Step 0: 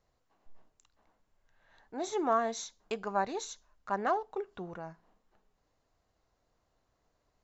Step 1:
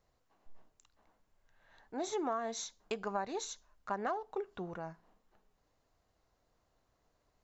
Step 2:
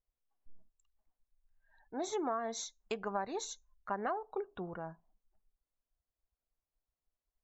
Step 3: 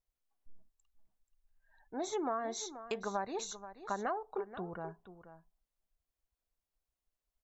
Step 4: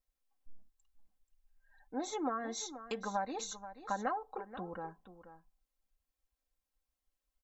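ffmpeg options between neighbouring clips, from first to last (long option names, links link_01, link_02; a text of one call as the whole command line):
ffmpeg -i in.wav -af "acompressor=threshold=-32dB:ratio=6" out.wav
ffmpeg -i in.wav -af "afftdn=noise_reduction=23:noise_floor=-57" out.wav
ffmpeg -i in.wav -af "aecho=1:1:482:0.224" out.wav
ffmpeg -i in.wav -af "aecho=1:1:3.8:0.72,volume=-1.5dB" out.wav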